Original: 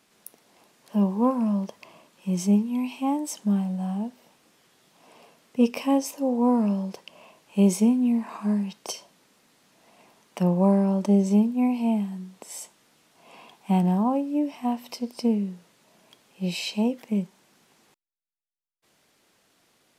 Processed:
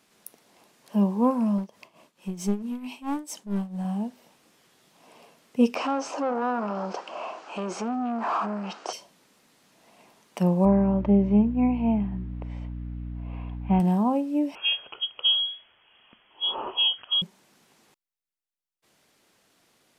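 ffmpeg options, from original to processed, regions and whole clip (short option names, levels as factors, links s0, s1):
-filter_complex "[0:a]asettb=1/sr,asplit=3[s0][s1][s2];[s0]atrim=end=1.584[s3];[s1]atrim=start=1.58:end=3.85,asetpts=PTS-STARTPTS,afade=t=in:d=0.004:c=qsin,afade=t=out:st=2.266:d=0.004:c=qsin,aeval=exprs='clip(val(0),-1,0.0447)':c=same,tremolo=f=4.5:d=0.79[s4];[s2]atrim=start=3.846[s5];[s3][s4]acrossfade=d=0.004:c1=hsin:c2=qsin[s6];[s6][s5]acrossfade=d=0.004:c1=qsin:c2=hsin,asettb=1/sr,asplit=3[s7][s8][s9];[s7]atrim=end=5.754[s10];[s8]atrim=start=5.75:end=8.93,asetpts=PTS-STARTPTS,afade=t=in:d=0.004:c=qsin,afade=t=out:st=3.176:d=0.004:c=qsin,acompressor=threshold=0.0398:ratio=5:attack=3.2:release=140:knee=1:detection=peak,asplit=2[s11][s12];[s12]highpass=f=720:p=1,volume=15.8,asoftclip=type=tanh:threshold=0.0944[s13];[s11][s13]amix=inputs=2:normalize=0,lowpass=f=1900:p=1,volume=0.501,highpass=260,equalizer=f=330:t=q:w=4:g=4,equalizer=f=740:t=q:w=4:g=7,equalizer=f=1300:t=q:w=4:g=8,equalizer=f=2000:t=q:w=4:g=-6,equalizer=f=3600:t=q:w=4:g=-6,lowpass=f=7200:w=0.5412,lowpass=f=7200:w=1.3066[s14];[s9]atrim=start=8.926[s15];[s10][s14]acrossfade=d=0.004:c1=hsin:c2=qsin[s16];[s16][s15]acrossfade=d=0.004:c1=qsin:c2=hsin,asettb=1/sr,asplit=3[s17][s18][s19];[s17]atrim=end=10.654[s20];[s18]atrim=start=10.65:end=13.8,asetpts=PTS-STARTPTS,afade=t=in:d=0.004:c=qsin,afade=t=out:st=3.146:d=0.004:c=qsin,lowpass=f=2600:w=0.5412,lowpass=f=2600:w=1.3066,aeval=exprs='val(0)+0.0224*(sin(2*PI*60*n/s)+sin(2*PI*2*60*n/s)/2+sin(2*PI*3*60*n/s)/3+sin(2*PI*4*60*n/s)/4+sin(2*PI*5*60*n/s)/5)':c=same[s21];[s19]atrim=start=13.796[s22];[s20][s21]acrossfade=d=0.004:c1=hsin:c2=qsin[s23];[s23][s22]acrossfade=d=0.004:c1=qsin:c2=hsin,asettb=1/sr,asplit=3[s24][s25][s26];[s24]atrim=end=14.554[s27];[s25]atrim=start=14.55:end=17.22,asetpts=PTS-STARTPTS,afade=t=in:d=0.004:c=qsin,afade=t=out:st=2.666:d=0.004:c=qsin,highshelf=f=2700:g=7.5,lowpass=f=3000:t=q:w=0.5098,lowpass=f=3000:t=q:w=0.6013,lowpass=f=3000:t=q:w=0.9,lowpass=f=3000:t=q:w=2.563,afreqshift=-3500[s28];[s26]atrim=start=17.216[s29];[s27][s28]acrossfade=d=0.004:c1=hsin:c2=qsin[s30];[s30][s29]acrossfade=d=0.004:c1=qsin:c2=hsin"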